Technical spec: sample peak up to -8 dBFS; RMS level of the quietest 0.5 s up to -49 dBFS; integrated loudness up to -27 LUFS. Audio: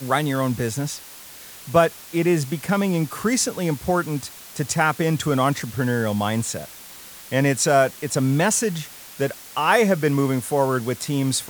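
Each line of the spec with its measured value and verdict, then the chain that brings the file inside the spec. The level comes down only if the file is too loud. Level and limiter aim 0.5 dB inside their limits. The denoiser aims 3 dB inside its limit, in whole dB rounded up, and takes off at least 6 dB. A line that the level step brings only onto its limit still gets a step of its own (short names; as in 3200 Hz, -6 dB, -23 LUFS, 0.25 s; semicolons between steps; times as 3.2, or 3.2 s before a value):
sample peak -3.5 dBFS: fail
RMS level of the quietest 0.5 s -41 dBFS: fail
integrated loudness -22.0 LUFS: fail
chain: denoiser 6 dB, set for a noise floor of -41 dBFS; gain -5.5 dB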